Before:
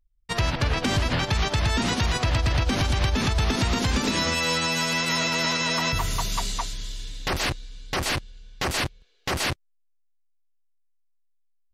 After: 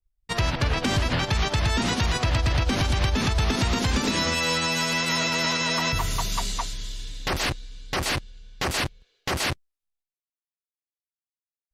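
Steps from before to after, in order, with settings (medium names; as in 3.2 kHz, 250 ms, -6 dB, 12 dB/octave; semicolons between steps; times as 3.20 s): expander -60 dBFS; Opus 96 kbps 48 kHz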